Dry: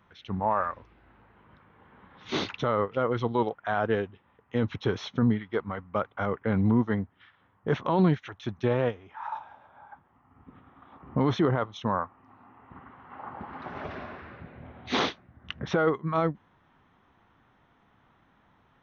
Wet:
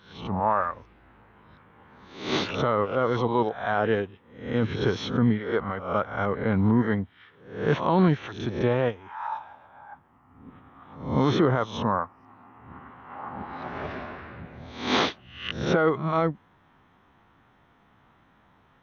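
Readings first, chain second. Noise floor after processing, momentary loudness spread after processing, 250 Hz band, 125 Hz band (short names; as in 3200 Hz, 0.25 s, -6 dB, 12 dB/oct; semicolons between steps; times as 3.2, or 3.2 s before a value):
-61 dBFS, 17 LU, +2.5 dB, +2.5 dB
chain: spectral swells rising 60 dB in 0.53 s; gain +1.5 dB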